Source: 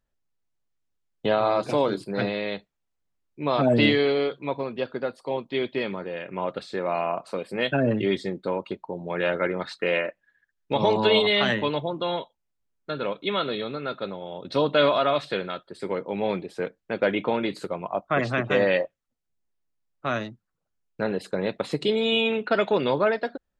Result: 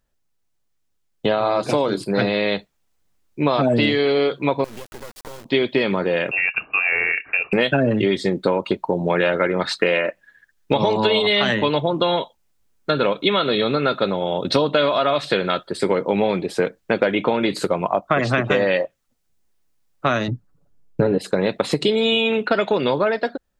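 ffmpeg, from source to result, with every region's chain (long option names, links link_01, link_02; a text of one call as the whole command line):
ffmpeg -i in.wav -filter_complex "[0:a]asettb=1/sr,asplit=3[link_01][link_02][link_03];[link_01]atrim=end=4.644[link_04];[link_02]atrim=start=4.64:end=5.45,asetpts=PTS-STARTPTS,afade=type=in:duration=0.004:curve=qsin,afade=type=out:start_time=0.806:duration=0.004:curve=qsin,acompressor=threshold=-41dB:ratio=16:attack=3.2:release=140:knee=1:detection=peak,acrusher=bits=6:dc=4:mix=0:aa=0.000001[link_05];[link_03]atrim=start=5.446[link_06];[link_04][link_05]acrossfade=duration=0.004:curve1=hsin:curve2=qsin[link_07];[link_07][link_06]acrossfade=duration=0.004:curve1=qsin:curve2=hsin,asettb=1/sr,asplit=3[link_08][link_09][link_10];[link_08]atrim=end=6.314[link_11];[link_09]atrim=start=6.31:end=7.53,asetpts=PTS-STARTPTS,afade=type=in:duration=0.004:curve=qsin,afade=type=out:start_time=1.216:duration=0.004:curve=qsin,equalizer=frequency=760:width=0.65:gain=-10,lowpass=frequency=2500:width_type=q:width=0.5098,lowpass=frequency=2500:width_type=q:width=0.6013,lowpass=frequency=2500:width_type=q:width=0.9,lowpass=frequency=2500:width_type=q:width=2.563,afreqshift=-2900[link_12];[link_10]atrim=start=7.526[link_13];[link_11][link_12]acrossfade=duration=0.004:curve1=hsin:curve2=qsin[link_14];[link_14][link_13]acrossfade=duration=0.004:curve1=qsin:curve2=hsin,asettb=1/sr,asplit=3[link_15][link_16][link_17];[link_15]atrim=end=20.284[link_18];[link_16]atrim=start=20.28:end=21.18,asetpts=PTS-STARTPTS,afade=type=in:duration=0.004:curve=qsin,afade=type=out:start_time=0.896:duration=0.004:curve=qsin,tiltshelf=frequency=680:gain=8.5,aecho=1:1:7:0.54,atrim=end_sample=39690[link_19];[link_17]atrim=start=21.176[link_20];[link_18][link_19]acrossfade=duration=0.004:curve1=hsin:curve2=qsin[link_21];[link_21][link_20]acrossfade=duration=0.004:curve1=qsin:curve2=hsin,dynaudnorm=framelen=280:gausssize=17:maxgain=11.5dB,bass=frequency=250:gain=0,treble=frequency=4000:gain=3,acompressor=threshold=-21dB:ratio=10,volume=6.5dB" out.wav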